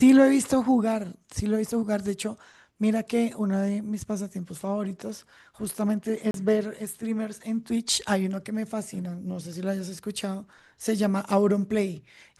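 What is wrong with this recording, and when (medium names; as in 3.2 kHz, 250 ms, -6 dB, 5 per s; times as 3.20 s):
6.31–6.34 s: dropout 32 ms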